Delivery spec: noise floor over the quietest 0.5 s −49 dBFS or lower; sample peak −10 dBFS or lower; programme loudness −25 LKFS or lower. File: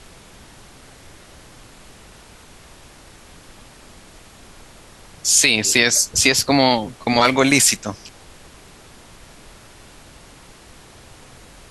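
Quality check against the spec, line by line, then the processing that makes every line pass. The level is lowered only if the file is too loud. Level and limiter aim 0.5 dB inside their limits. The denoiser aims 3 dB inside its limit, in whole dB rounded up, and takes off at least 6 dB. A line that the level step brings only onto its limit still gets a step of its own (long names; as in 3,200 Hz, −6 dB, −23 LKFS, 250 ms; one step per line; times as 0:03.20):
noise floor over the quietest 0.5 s −45 dBFS: out of spec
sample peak −2.0 dBFS: out of spec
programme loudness −15.5 LKFS: out of spec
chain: level −10 dB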